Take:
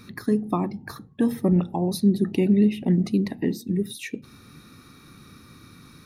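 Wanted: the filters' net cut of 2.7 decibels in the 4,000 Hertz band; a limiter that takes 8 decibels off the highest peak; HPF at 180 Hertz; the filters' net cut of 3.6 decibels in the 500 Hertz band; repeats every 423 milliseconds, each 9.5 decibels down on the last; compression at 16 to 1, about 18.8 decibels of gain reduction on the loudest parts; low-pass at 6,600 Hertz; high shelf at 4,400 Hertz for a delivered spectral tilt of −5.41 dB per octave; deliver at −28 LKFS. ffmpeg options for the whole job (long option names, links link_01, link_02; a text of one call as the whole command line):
ffmpeg -i in.wav -af "highpass=180,lowpass=6600,equalizer=frequency=500:width_type=o:gain=-5,equalizer=frequency=4000:width_type=o:gain=-5,highshelf=frequency=4400:gain=4.5,acompressor=threshold=-36dB:ratio=16,alimiter=level_in=9dB:limit=-24dB:level=0:latency=1,volume=-9dB,aecho=1:1:423|846|1269|1692:0.335|0.111|0.0365|0.012,volume=16dB" out.wav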